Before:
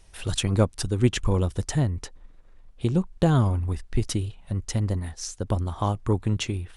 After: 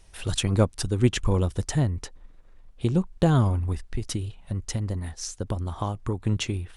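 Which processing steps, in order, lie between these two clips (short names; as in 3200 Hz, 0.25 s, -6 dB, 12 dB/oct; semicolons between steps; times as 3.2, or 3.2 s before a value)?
3.86–6.25 compressor, threshold -24 dBFS, peak gain reduction 7 dB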